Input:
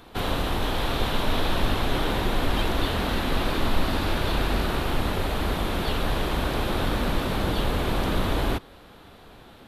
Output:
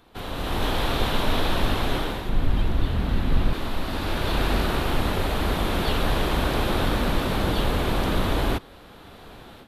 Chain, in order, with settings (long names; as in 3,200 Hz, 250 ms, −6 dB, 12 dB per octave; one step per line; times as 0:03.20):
0:02.29–0:03.53: bass and treble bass +12 dB, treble −4 dB
automatic gain control gain up to 12.5 dB
level −8 dB